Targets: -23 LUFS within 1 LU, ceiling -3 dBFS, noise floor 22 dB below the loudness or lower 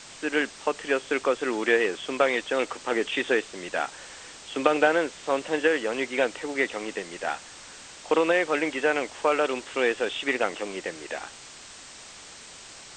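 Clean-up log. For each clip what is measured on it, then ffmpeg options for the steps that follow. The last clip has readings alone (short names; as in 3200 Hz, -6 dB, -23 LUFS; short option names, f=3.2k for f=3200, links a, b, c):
noise floor -46 dBFS; noise floor target -49 dBFS; loudness -26.5 LUFS; peak -4.0 dBFS; loudness target -23.0 LUFS
-> -af "afftdn=nr=6:nf=-46"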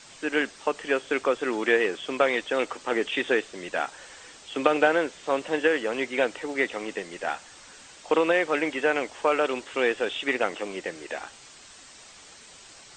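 noise floor -49 dBFS; loudness -26.5 LUFS; peak -4.0 dBFS; loudness target -23.0 LUFS
-> -af "volume=3.5dB,alimiter=limit=-3dB:level=0:latency=1"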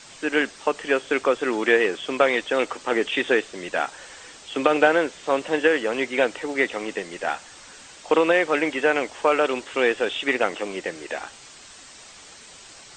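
loudness -23.0 LUFS; peak -3.0 dBFS; noise floor -46 dBFS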